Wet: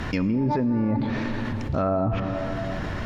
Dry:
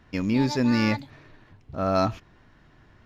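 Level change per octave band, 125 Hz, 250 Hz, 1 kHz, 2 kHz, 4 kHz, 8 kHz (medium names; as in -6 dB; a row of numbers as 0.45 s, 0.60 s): +4.0 dB, +1.0 dB, +1.0 dB, -1.0 dB, -5.5 dB, no reading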